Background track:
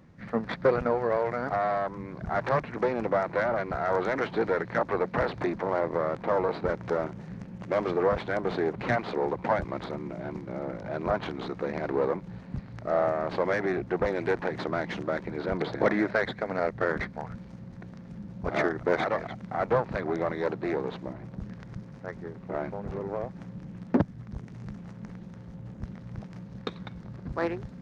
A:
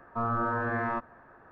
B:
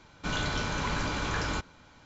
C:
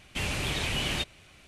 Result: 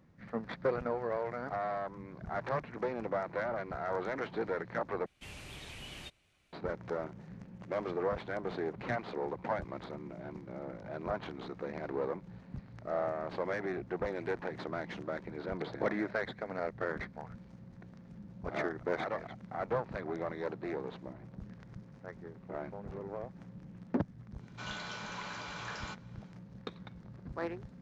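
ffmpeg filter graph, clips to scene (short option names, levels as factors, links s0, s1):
-filter_complex "[0:a]volume=0.376[s0];[2:a]highpass=520,lowpass=6800[s1];[s0]asplit=2[s2][s3];[s2]atrim=end=5.064[s4];[3:a]atrim=end=1.47,asetpts=PTS-STARTPTS,volume=0.141[s5];[s3]atrim=start=6.526[s6];[s1]atrim=end=2.05,asetpts=PTS-STARTPTS,volume=0.355,afade=t=in:d=0.1,afade=t=out:st=1.95:d=0.1,adelay=24340[s7];[s4][s5]acrossfade=d=0.004:c1=hsin:c2=hsin[s8];[s8][s6]acrossfade=d=0.004:c1=hsin:c2=hsin[s9];[s9][s7]amix=inputs=2:normalize=0"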